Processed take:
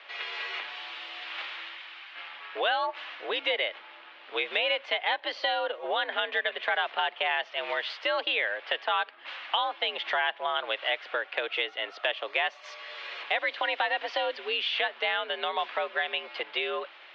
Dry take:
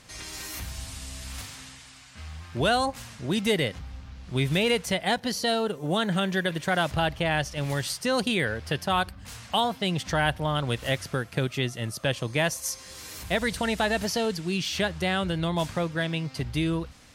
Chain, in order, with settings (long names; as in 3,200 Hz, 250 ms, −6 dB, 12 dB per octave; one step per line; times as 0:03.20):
spectral tilt +2.5 dB per octave
single-sideband voice off tune +73 Hz 370–3,200 Hz
downward compressor 2.5 to 1, threshold −34 dBFS, peak gain reduction 10 dB
level +6 dB